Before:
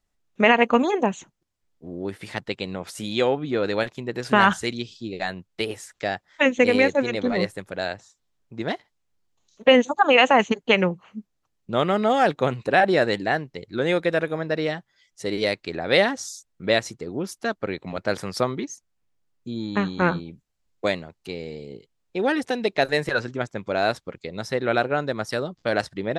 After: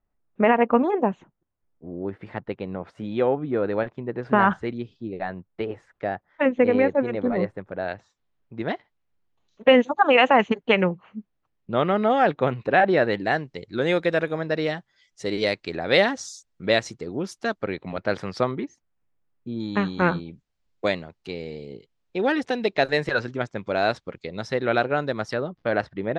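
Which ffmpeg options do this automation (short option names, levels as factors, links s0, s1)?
-af "asetnsamples=n=441:p=0,asendcmd='7.88 lowpass f 2800;13.26 lowpass f 6700;17.64 lowpass f 3700;18.51 lowpass f 2200;19.6 lowpass f 5200;25.33 lowpass f 2300',lowpass=1400"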